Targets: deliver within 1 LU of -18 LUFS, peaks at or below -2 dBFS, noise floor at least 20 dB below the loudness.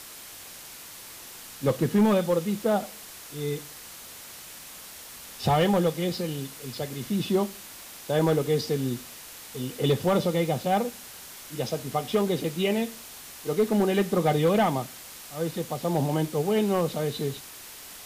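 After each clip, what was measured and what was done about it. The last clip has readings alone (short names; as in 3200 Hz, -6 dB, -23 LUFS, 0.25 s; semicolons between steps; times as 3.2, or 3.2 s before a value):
clipped 0.6%; flat tops at -15.5 dBFS; noise floor -44 dBFS; noise floor target -47 dBFS; loudness -26.5 LUFS; peak -15.5 dBFS; loudness target -18.0 LUFS
-> clip repair -15.5 dBFS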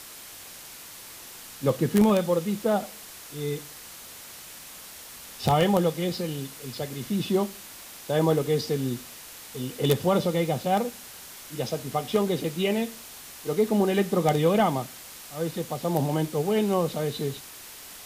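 clipped 0.0%; noise floor -44 dBFS; noise floor target -46 dBFS
-> denoiser 6 dB, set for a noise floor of -44 dBFS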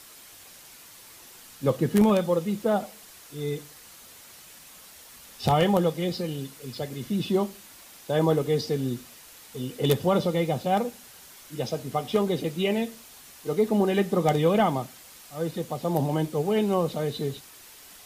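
noise floor -49 dBFS; loudness -26.5 LUFS; peak -6.5 dBFS; loudness target -18.0 LUFS
-> gain +8.5 dB; limiter -2 dBFS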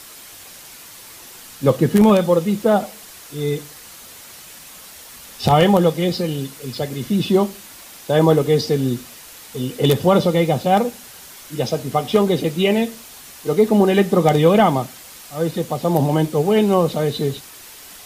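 loudness -18.0 LUFS; peak -2.0 dBFS; noise floor -41 dBFS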